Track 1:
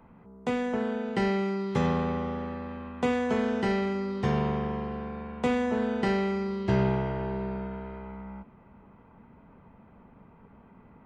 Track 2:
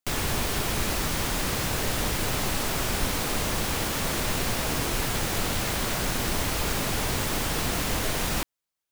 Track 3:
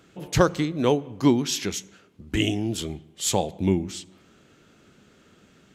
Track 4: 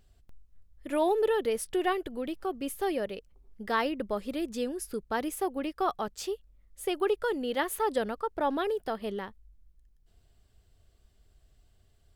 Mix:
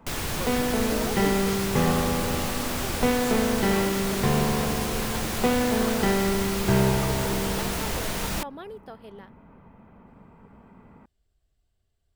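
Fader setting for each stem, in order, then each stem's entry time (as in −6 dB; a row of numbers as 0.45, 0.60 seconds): +3.0, −2.5, −17.0, −10.0 decibels; 0.00, 0.00, 0.00, 0.00 seconds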